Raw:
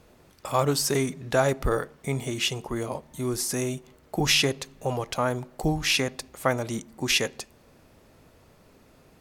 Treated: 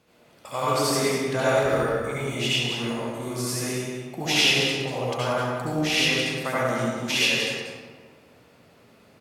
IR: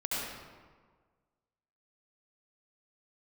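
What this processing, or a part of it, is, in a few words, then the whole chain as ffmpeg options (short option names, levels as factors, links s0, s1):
PA in a hall: -filter_complex "[0:a]highpass=110,equalizer=f=2900:t=o:w=1.6:g=4.5,aecho=1:1:187:0.398[s0];[1:a]atrim=start_sample=2205[s1];[s0][s1]afir=irnorm=-1:irlink=0,volume=0.531"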